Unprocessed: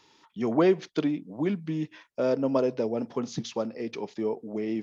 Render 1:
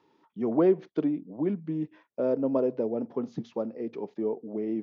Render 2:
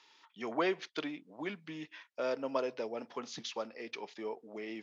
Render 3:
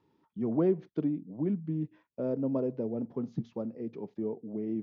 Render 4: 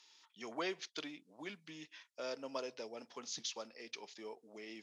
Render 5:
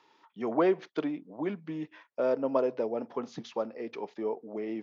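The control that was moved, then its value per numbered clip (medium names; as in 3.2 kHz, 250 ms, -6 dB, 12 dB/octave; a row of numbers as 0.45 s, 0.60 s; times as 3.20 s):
band-pass filter, frequency: 340 Hz, 2.4 kHz, 130 Hz, 6.2 kHz, 910 Hz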